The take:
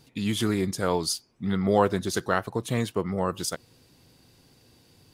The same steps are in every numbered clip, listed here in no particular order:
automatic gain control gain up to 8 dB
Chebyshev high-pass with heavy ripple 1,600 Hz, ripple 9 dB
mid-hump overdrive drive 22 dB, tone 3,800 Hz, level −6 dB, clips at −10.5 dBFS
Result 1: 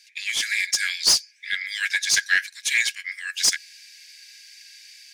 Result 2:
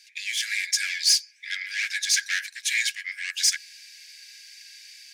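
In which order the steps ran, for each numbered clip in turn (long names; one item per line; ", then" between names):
Chebyshev high-pass with heavy ripple, then mid-hump overdrive, then automatic gain control
mid-hump overdrive, then Chebyshev high-pass with heavy ripple, then automatic gain control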